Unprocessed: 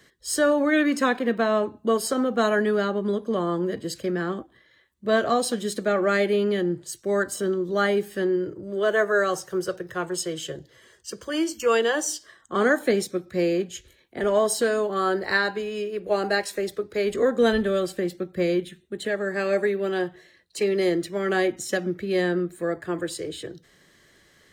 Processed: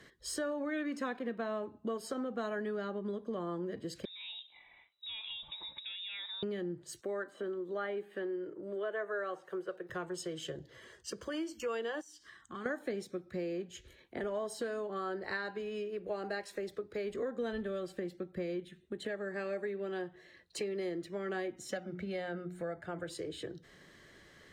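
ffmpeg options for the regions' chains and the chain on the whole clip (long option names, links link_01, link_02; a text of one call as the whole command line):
ffmpeg -i in.wav -filter_complex "[0:a]asettb=1/sr,asplit=3[link_01][link_02][link_03];[link_01]atrim=end=4.054[link_04];[link_02]atrim=start=4.05:end=6.43,asetpts=PTS-STARTPTS,afade=type=in:duration=0.004:curve=qsin,afade=type=out:start_time=2.376:duration=0.004:curve=qsin,acompressor=threshold=-42dB:ratio=3:attack=3.2:release=140:knee=1:detection=peak,lowpass=frequency=3400:width_type=q:width=0.5098,lowpass=frequency=3400:width_type=q:width=0.6013,lowpass=frequency=3400:width_type=q:width=0.9,lowpass=frequency=3400:width_type=q:width=2.563,afreqshift=-4000[link_05];[link_03]atrim=start=6.426[link_06];[link_04][link_05]acrossfade=duration=0.004:curve1=hsin:curve2=qsin[link_07];[link_07][link_06]acrossfade=duration=0.004:curve1=qsin:curve2=hsin,asettb=1/sr,asplit=3[link_08][link_09][link_10];[link_08]atrim=end=7.014[link_11];[link_09]atrim=start=7.01:end=9.9,asetpts=PTS-STARTPTS,afade=type=in:duration=0.004:curve=qsin,afade=type=out:start_time=2.886:duration=0.004:curve=qsin,highpass=310,equalizer=frequency=5400:width=2.6:gain=-10.5,acrossover=split=4000[link_12][link_13];[link_13]acompressor=threshold=-58dB:ratio=4:attack=1:release=60[link_14];[link_12][link_14]amix=inputs=2:normalize=0[link_15];[link_10]atrim=start=9.896[link_16];[link_11][link_15]acrossfade=duration=0.004:curve1=hsin:curve2=qsin[link_17];[link_17][link_16]acrossfade=duration=0.004:curve1=qsin:curve2=hsin,asettb=1/sr,asplit=3[link_18][link_19][link_20];[link_18]atrim=end=12.014[link_21];[link_19]atrim=start=12.01:end=12.66,asetpts=PTS-STARTPTS,afade=type=in:duration=0.004:curve=qsin,afade=type=out:start_time=0.646:duration=0.004:curve=qsin,equalizer=frequency=560:width=1.4:gain=-14.5,acompressor=threshold=-49dB:ratio=2:attack=3.2:release=140:knee=1:detection=peak[link_22];[link_20]atrim=start=12.656[link_23];[link_21][link_22]acrossfade=duration=0.004:curve1=hsin:curve2=qsin[link_24];[link_24][link_23]acrossfade=duration=0.004:curve1=qsin:curve2=hsin,asettb=1/sr,asplit=3[link_25][link_26][link_27];[link_25]atrim=end=21.714[link_28];[link_26]atrim=start=21.71:end=23.1,asetpts=PTS-STARTPTS,afade=type=in:duration=0.004:curve=qsin,afade=type=out:start_time=1.386:duration=0.004:curve=qsin,highshelf=frequency=9900:gain=-7,bandreject=frequency=60:width_type=h:width=6,bandreject=frequency=120:width_type=h:width=6,bandreject=frequency=180:width_type=h:width=6,bandreject=frequency=240:width_type=h:width=6,bandreject=frequency=300:width_type=h:width=6,bandreject=frequency=360:width_type=h:width=6,aecho=1:1:1.4:0.52,atrim=end_sample=61299[link_29];[link_27]atrim=start=23.096[link_30];[link_28][link_29]acrossfade=duration=0.004:curve1=hsin:curve2=qsin[link_31];[link_31][link_30]acrossfade=duration=0.004:curve1=qsin:curve2=hsin,aemphasis=mode=reproduction:type=cd,acompressor=threshold=-40dB:ratio=3" out.wav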